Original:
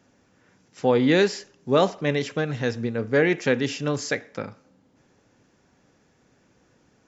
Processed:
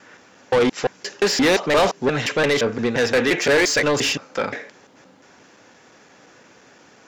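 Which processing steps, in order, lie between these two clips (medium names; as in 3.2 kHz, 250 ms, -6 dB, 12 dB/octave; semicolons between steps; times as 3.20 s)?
slices played last to first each 174 ms, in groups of 3; overdrive pedal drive 26 dB, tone 5.9 kHz, clips at -6 dBFS; trim -3 dB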